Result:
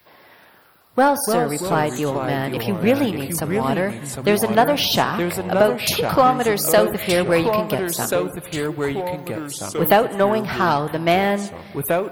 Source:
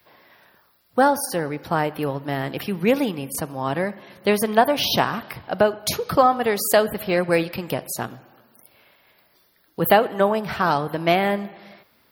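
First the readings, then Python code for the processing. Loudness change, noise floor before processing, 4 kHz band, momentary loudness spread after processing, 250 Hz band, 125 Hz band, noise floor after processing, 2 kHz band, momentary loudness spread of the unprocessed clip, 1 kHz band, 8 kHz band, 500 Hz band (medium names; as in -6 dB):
+2.0 dB, -61 dBFS, +3.0 dB, 9 LU, +3.5 dB, +4.5 dB, -50 dBFS, +2.5 dB, 10 LU, +2.0 dB, +4.5 dB, +3.0 dB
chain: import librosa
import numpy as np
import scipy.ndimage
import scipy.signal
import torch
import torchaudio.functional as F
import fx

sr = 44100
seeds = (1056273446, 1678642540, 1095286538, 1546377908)

p1 = 10.0 ** (-19.0 / 20.0) * np.tanh(x / 10.0 ** (-19.0 / 20.0))
p2 = x + F.gain(torch.from_numpy(p1), -3.5).numpy()
p3 = fx.echo_pitch(p2, sr, ms=111, semitones=-3, count=2, db_per_echo=-6.0)
y = F.gain(torch.from_numpy(p3), -1.0).numpy()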